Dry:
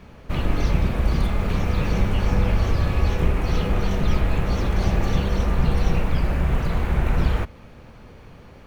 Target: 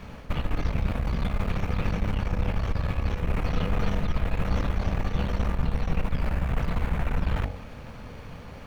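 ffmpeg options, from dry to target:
-filter_complex "[0:a]equalizer=f=360:t=o:w=0.26:g=-8.5,acrossover=split=3500[s0][s1];[s1]acompressor=threshold=0.00398:ratio=4:attack=1:release=60[s2];[s0][s2]amix=inputs=2:normalize=0,bandreject=f=46.27:t=h:w=4,bandreject=f=92.54:t=h:w=4,bandreject=f=138.81:t=h:w=4,bandreject=f=185.08:t=h:w=4,bandreject=f=231.35:t=h:w=4,bandreject=f=277.62:t=h:w=4,bandreject=f=323.89:t=h:w=4,bandreject=f=370.16:t=h:w=4,bandreject=f=416.43:t=h:w=4,bandreject=f=462.7:t=h:w=4,bandreject=f=508.97:t=h:w=4,bandreject=f=555.24:t=h:w=4,bandreject=f=601.51:t=h:w=4,bandreject=f=647.78:t=h:w=4,bandreject=f=694.05:t=h:w=4,bandreject=f=740.32:t=h:w=4,bandreject=f=786.59:t=h:w=4,bandreject=f=832.86:t=h:w=4,areverse,acompressor=threshold=0.0501:ratio=6,areverse,aeval=exprs='(tanh(17.8*val(0)+0.65)-tanh(0.65))/17.8':c=same,volume=2.37"

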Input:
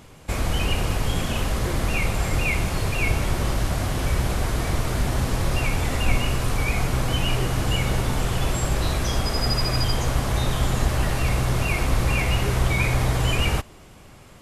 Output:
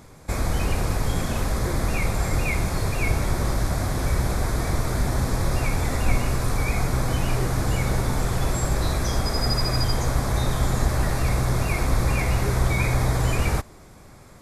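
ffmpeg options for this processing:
-af "equalizer=f=2900:t=o:w=0.3:g=-14.5"

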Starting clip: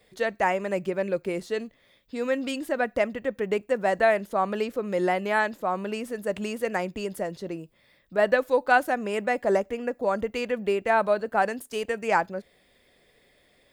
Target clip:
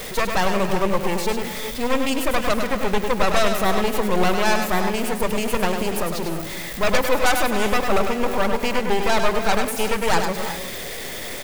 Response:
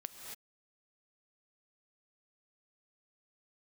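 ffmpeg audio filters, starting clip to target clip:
-filter_complex "[0:a]aeval=exprs='val(0)+0.5*0.0398*sgn(val(0))':c=same,aeval=exprs='0.422*(cos(1*acos(clip(val(0)/0.422,-1,1)))-cos(1*PI/2))+0.00596*(cos(3*acos(clip(val(0)/0.422,-1,1)))-cos(3*PI/2))+0.0841*(cos(5*acos(clip(val(0)/0.422,-1,1)))-cos(5*PI/2))+0.00944*(cos(7*acos(clip(val(0)/0.422,-1,1)))-cos(7*PI/2))+0.188*(cos(8*acos(clip(val(0)/0.422,-1,1)))-cos(8*PI/2))':c=same,highshelf=f=6600:g=3.5,atempo=1.2,asplit=2[s0][s1];[1:a]atrim=start_sample=2205,adelay=101[s2];[s1][s2]afir=irnorm=-1:irlink=0,volume=0.794[s3];[s0][s3]amix=inputs=2:normalize=0,volume=0.562"

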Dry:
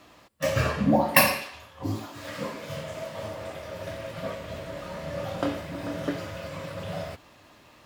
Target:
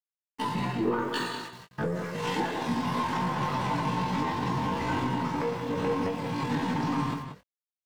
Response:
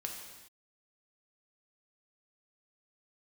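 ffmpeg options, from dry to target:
-filter_complex "[0:a]highpass=f=43:p=1,aemphasis=mode=reproduction:type=riaa,agate=range=0.0794:threshold=0.0126:ratio=16:detection=peak,lowshelf=f=240:g=-5.5,dynaudnorm=f=130:g=5:m=6.31,alimiter=limit=0.224:level=0:latency=1:release=482,acrossover=split=160[s0][s1];[s0]acompressor=threshold=0.0794:ratio=6[s2];[s2][s1]amix=inputs=2:normalize=0,aeval=exprs='(tanh(6.31*val(0)+0.1)-tanh(0.1))/6.31':c=same,asetrate=72056,aresample=44100,atempo=0.612027,aeval=exprs='val(0)*gte(abs(val(0)),0.00501)':c=same,asplit=2[s3][s4];[s4]adelay=21,volume=0.447[s5];[s3][s5]amix=inputs=2:normalize=0,asplit=2[s6][s7];[s7]adelay=180.8,volume=0.398,highshelf=f=4000:g=-4.07[s8];[s6][s8]amix=inputs=2:normalize=0,volume=0.562"

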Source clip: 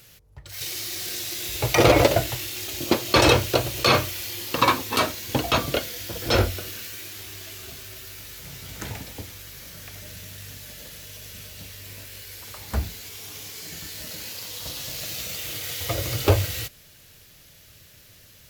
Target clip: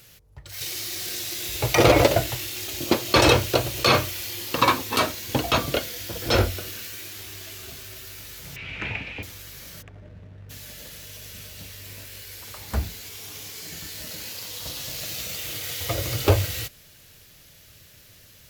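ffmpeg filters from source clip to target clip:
-filter_complex "[0:a]asettb=1/sr,asplit=3[s0][s1][s2];[s0]atrim=end=8.564[s3];[s1]atrim=start=8.56:end=9.23,asetpts=PTS-STARTPTS,afade=t=in:d=0.004:c=qsin,afade=t=out:st=0.666:d=0.004:c=qsin,lowpass=f=2500:t=q:w=6.8[s4];[s2]atrim=start=9.226[s5];[s3][s4]acrossfade=d=0.004:c1=hsin:c2=qsin[s6];[s6][s5]acrossfade=d=0.004:c1=qsin:c2=hsin,asplit=3[s7][s8][s9];[s7]afade=t=out:st=9.81:d=0.02[s10];[s8]adynamicsmooth=sensitivity=5:basefreq=540,afade=t=in:st=9.81:d=0.02,afade=t=out:st=10.49:d=0.02[s11];[s9]afade=t=in:st=10.49:d=0.02[s12];[s10][s11][s12]amix=inputs=3:normalize=0"

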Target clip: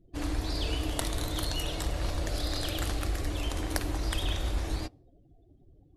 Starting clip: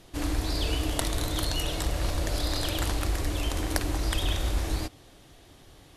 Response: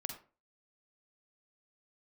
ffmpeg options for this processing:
-filter_complex "[0:a]asettb=1/sr,asplit=3[s0][s1][s2];[s0]atrim=end=2.294[s3];[s1]atrim=start=2.29:end=3.25,asetpts=PTS-STARTPTS,afade=t=in:d=0.004:c=qsin,afade=t=out:st=0.956:d=0.004:c=qsin,bandreject=f=950:w=8[s4];[s2]atrim=start=3.246[s5];[s3][s4]acrossfade=d=0.004:c1=hsin:c2=qsin[s6];[s6][s5]acrossfade=d=0.004:c1=qsin:c2=hsin,afftdn=nr=34:nf=-48,volume=0.708"

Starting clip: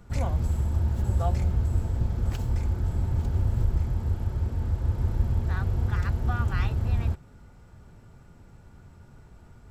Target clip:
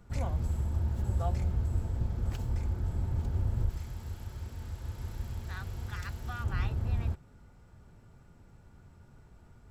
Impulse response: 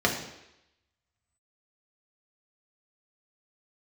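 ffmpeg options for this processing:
-filter_complex "[0:a]asettb=1/sr,asplit=3[s0][s1][s2];[s0]atrim=end=3.694[s3];[s1]atrim=start=3.69:end=6.44,asetpts=PTS-STARTPTS,afade=t=in:d=0.004:c=qsin,afade=t=out:st=2.746:d=0.004:c=qsin,tiltshelf=f=1500:g=-7.5[s4];[s2]atrim=start=6.436[s5];[s3][s4]acrossfade=d=0.004:c1=hsin:c2=qsin[s6];[s6][s5]acrossfade=d=0.004:c1=qsin:c2=hsin,volume=0.531"

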